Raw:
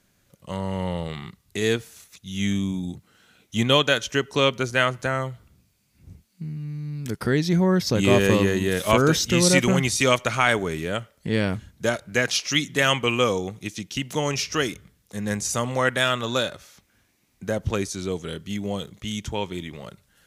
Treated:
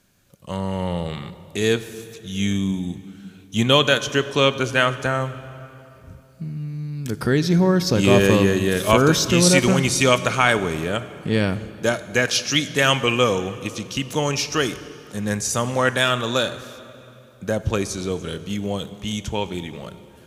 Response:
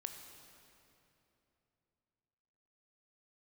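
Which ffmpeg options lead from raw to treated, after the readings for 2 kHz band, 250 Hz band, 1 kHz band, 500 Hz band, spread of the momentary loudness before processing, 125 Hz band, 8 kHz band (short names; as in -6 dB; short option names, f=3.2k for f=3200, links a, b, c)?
+2.5 dB, +3.0 dB, +3.0 dB, +3.0 dB, 15 LU, +3.0 dB, +3.0 dB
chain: -filter_complex "[0:a]bandreject=f=2k:w=13,asplit=2[a][b];[1:a]atrim=start_sample=2205[c];[b][c]afir=irnorm=-1:irlink=0,volume=0dB[d];[a][d]amix=inputs=2:normalize=0,volume=-1.5dB"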